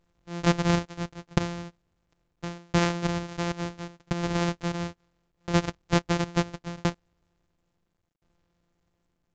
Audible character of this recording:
a buzz of ramps at a fixed pitch in blocks of 256 samples
tremolo saw down 0.73 Hz, depth 100%
mu-law

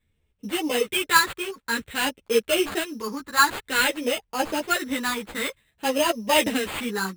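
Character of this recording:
phaser sweep stages 4, 0.53 Hz, lowest notch 580–1,500 Hz
aliases and images of a low sample rate 5,700 Hz, jitter 0%
a shimmering, thickened sound

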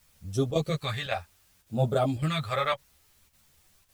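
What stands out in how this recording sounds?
phaser sweep stages 2, 0.66 Hz, lowest notch 260–2,100 Hz
a quantiser's noise floor 12 bits, dither triangular
chopped level 1.8 Hz, depth 60%, duty 90%
a shimmering, thickened sound

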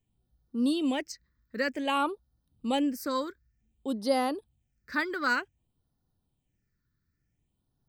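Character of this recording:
phaser sweep stages 6, 0.54 Hz, lowest notch 740–2,300 Hz

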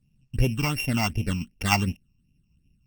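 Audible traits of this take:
a buzz of ramps at a fixed pitch in blocks of 16 samples
tremolo saw down 6.4 Hz, depth 35%
phaser sweep stages 8, 2.7 Hz, lowest notch 470–1,400 Hz
Opus

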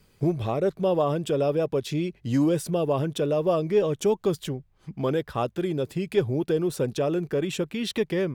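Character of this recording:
background noise floor −63 dBFS
spectral slope −6.5 dB per octave

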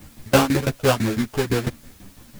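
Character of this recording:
aliases and images of a low sample rate 2,000 Hz, jitter 20%
tremolo saw down 6 Hz, depth 95%
a quantiser's noise floor 10 bits, dither triangular
a shimmering, thickened sound

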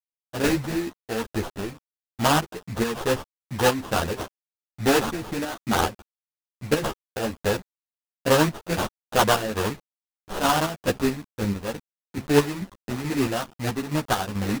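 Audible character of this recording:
aliases and images of a low sample rate 2,200 Hz, jitter 20%
chopped level 2.3 Hz, depth 60%, duty 50%
a quantiser's noise floor 8 bits, dither none
a shimmering, thickened sound

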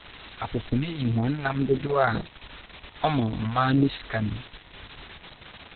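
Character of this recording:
phaser sweep stages 2, 1.9 Hz, lowest notch 240–1,500 Hz
a quantiser's noise floor 8 bits, dither triangular
Opus

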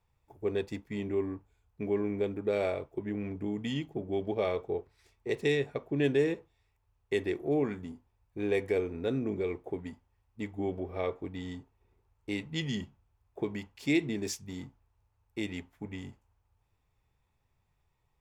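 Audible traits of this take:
background noise floor −76 dBFS
spectral slope −5.5 dB per octave

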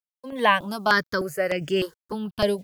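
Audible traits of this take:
a quantiser's noise floor 10 bits, dither none
sample-and-hold tremolo 3.1 Hz
notches that jump at a steady rate 3.3 Hz 340–3,900 Hz

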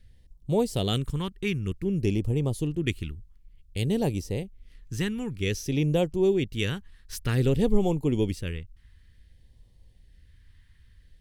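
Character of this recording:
phaser sweep stages 2, 0.54 Hz, lowest notch 590–1,500 Hz

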